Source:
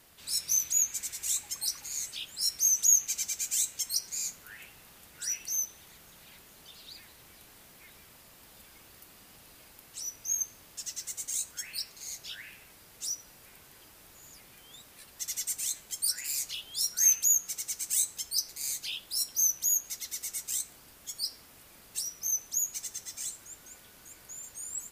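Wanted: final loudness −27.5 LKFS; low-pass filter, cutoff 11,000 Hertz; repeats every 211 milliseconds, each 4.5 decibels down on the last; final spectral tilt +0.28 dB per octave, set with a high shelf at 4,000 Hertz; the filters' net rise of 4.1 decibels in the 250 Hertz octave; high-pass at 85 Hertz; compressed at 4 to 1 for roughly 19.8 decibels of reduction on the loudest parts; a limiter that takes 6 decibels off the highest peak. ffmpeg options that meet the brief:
ffmpeg -i in.wav -af "highpass=85,lowpass=11000,equalizer=frequency=250:width_type=o:gain=5.5,highshelf=frequency=4000:gain=6.5,acompressor=threshold=-39dB:ratio=4,alimiter=level_in=6dB:limit=-24dB:level=0:latency=1,volume=-6dB,aecho=1:1:211|422|633|844|1055|1266|1477|1688|1899:0.596|0.357|0.214|0.129|0.0772|0.0463|0.0278|0.0167|0.01,volume=11.5dB" out.wav

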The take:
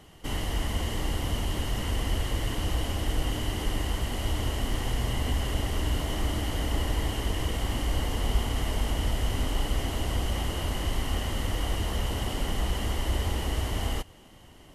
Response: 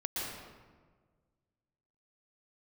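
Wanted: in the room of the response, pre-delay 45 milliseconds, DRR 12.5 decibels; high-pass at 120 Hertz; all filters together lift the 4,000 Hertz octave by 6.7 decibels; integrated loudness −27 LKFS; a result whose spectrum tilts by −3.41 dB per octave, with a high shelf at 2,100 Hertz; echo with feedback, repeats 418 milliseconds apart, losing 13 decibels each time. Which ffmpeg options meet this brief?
-filter_complex "[0:a]highpass=120,highshelf=frequency=2100:gain=5.5,equalizer=frequency=4000:width_type=o:gain=4.5,aecho=1:1:418|836|1254:0.224|0.0493|0.0108,asplit=2[link_01][link_02];[1:a]atrim=start_sample=2205,adelay=45[link_03];[link_02][link_03]afir=irnorm=-1:irlink=0,volume=-16.5dB[link_04];[link_01][link_04]amix=inputs=2:normalize=0,volume=2.5dB"

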